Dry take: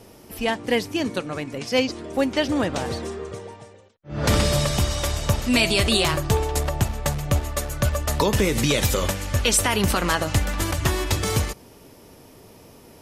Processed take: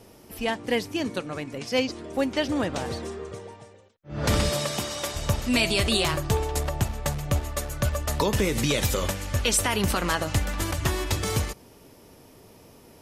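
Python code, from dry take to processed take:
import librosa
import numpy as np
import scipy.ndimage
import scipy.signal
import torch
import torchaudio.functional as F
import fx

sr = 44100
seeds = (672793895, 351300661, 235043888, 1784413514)

y = fx.highpass(x, sr, hz=200.0, slope=12, at=(4.5, 5.15))
y = F.gain(torch.from_numpy(y), -3.5).numpy()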